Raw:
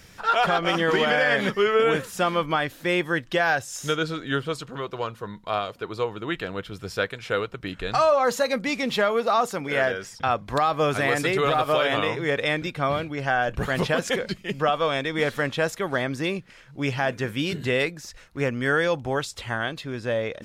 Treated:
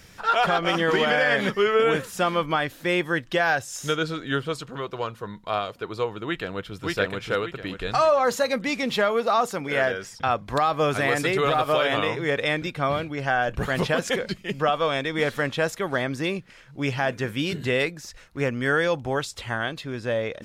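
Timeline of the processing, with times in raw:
6.25–6.77 s: echo throw 580 ms, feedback 35%, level -0.5 dB

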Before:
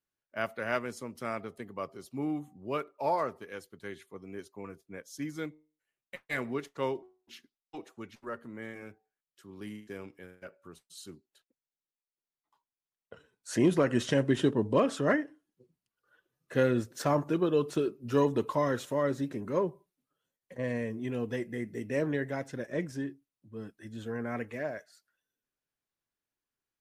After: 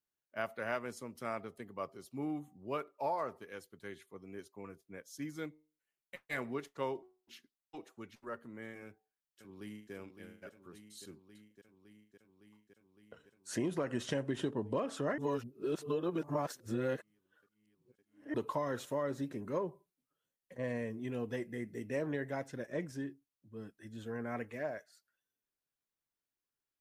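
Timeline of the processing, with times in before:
8.84–9.93 s: echo throw 560 ms, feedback 80%, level -8.5 dB
15.18–18.34 s: reverse
whole clip: dynamic bell 820 Hz, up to +4 dB, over -39 dBFS, Q 1.1; compression, threshold -26 dBFS; treble shelf 11 kHz +4 dB; trim -5 dB

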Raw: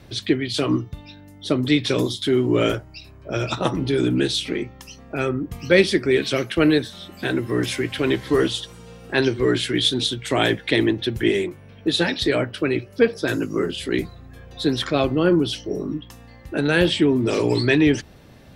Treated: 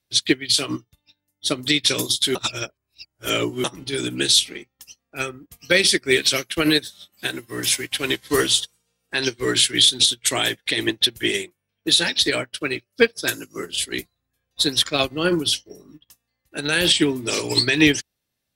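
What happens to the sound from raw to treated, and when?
2.35–3.64 s: reverse
whole clip: pre-emphasis filter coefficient 0.9; loudness maximiser +23 dB; upward expansion 2.5:1, over -34 dBFS; trim -1.5 dB

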